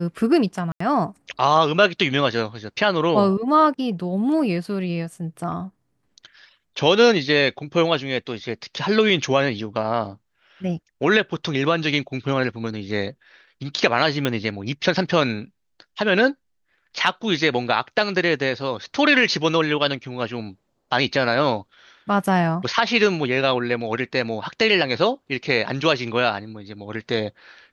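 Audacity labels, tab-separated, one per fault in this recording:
0.720000	0.800000	gap 84 ms
14.250000	14.250000	pop -8 dBFS

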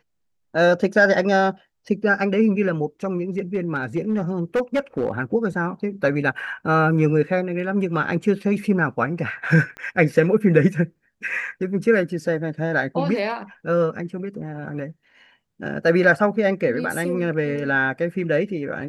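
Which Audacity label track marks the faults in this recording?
3.380000	5.180000	clipped -16 dBFS
9.770000	9.770000	pop -22 dBFS

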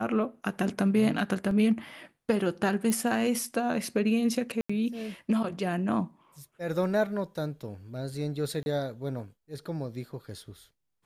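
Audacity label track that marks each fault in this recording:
1.510000	1.510000	gap 2.1 ms
2.900000	2.900000	pop -16 dBFS
4.610000	4.700000	gap 85 ms
8.630000	8.660000	gap 31 ms

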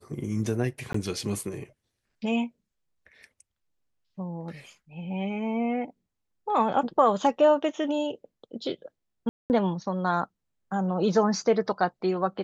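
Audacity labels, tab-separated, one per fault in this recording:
0.930000	0.940000	gap 14 ms
9.290000	9.500000	gap 0.209 s

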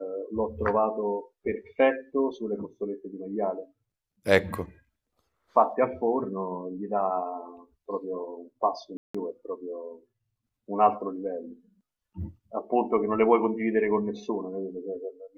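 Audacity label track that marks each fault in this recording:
8.970000	9.140000	gap 0.175 s

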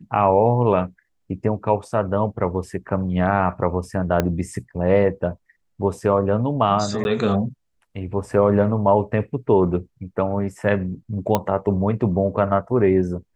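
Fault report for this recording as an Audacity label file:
4.200000	4.200000	pop -6 dBFS
7.040000	7.050000	gap 11 ms
11.350000	11.350000	pop -5 dBFS

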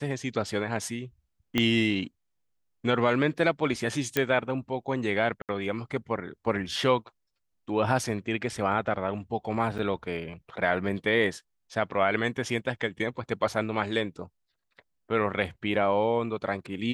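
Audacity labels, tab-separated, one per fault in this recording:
1.580000	1.580000	pop -11 dBFS
4.170000	4.170000	pop -9 dBFS
5.420000	5.490000	gap 68 ms
9.780000	9.790000	gap 7.6 ms

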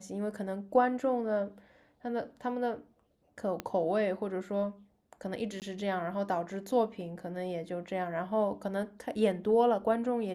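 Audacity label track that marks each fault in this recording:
3.600000	3.600000	pop -20 dBFS
5.600000	5.620000	gap 18 ms

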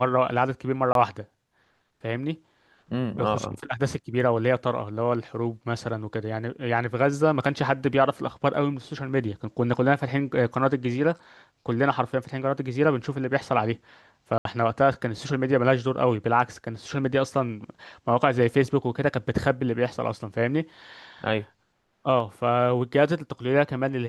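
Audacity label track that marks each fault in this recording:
0.930000	0.950000	gap 22 ms
14.380000	14.450000	gap 72 ms

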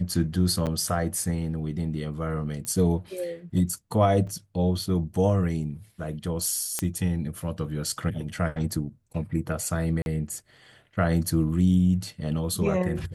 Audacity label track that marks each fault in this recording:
0.660000	0.670000	gap 8 ms
2.650000	2.650000	pop -20 dBFS
4.270000	4.270000	gap 4.4 ms
6.790000	6.790000	pop -11 dBFS
10.020000	10.060000	gap 41 ms

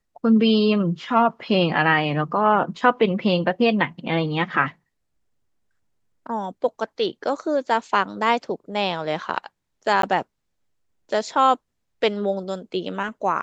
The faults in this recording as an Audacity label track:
10.020000	10.030000	gap 13 ms

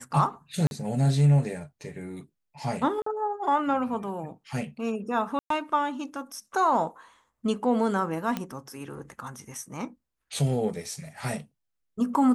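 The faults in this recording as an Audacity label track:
0.670000	0.710000	gap 41 ms
3.020000	3.060000	gap 44 ms
5.390000	5.500000	gap 0.113 s
8.370000	8.370000	pop -15 dBFS

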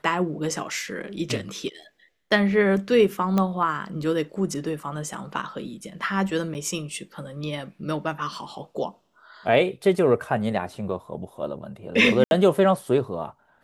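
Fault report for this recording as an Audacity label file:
3.380000	3.380000	pop -11 dBFS
6.540000	6.550000	gap 9 ms
12.240000	12.310000	gap 71 ms

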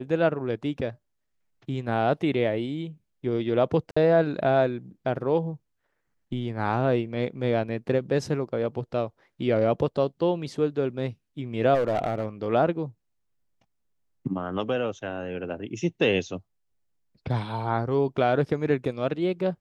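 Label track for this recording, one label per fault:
3.910000	3.960000	gap 55 ms
11.740000	12.470000	clipped -20 dBFS

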